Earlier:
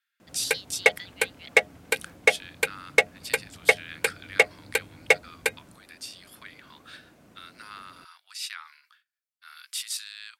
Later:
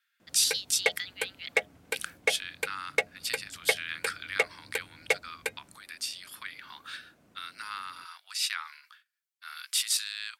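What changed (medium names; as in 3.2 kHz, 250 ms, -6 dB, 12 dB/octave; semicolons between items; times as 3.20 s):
speech +5.0 dB; background -7.5 dB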